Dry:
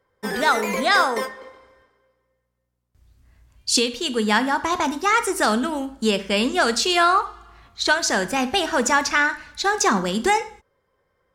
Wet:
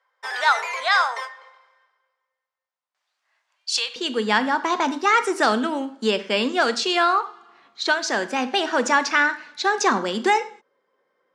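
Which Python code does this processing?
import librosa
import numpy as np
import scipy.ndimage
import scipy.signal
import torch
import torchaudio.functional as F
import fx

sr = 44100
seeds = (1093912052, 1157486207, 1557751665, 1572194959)

y = scipy.signal.sosfilt(scipy.signal.butter(2, 5400.0, 'lowpass', fs=sr, output='sos'), x)
y = fx.rider(y, sr, range_db=5, speed_s=2.0)
y = fx.highpass(y, sr, hz=fx.steps((0.0, 740.0), (3.96, 230.0)), slope=24)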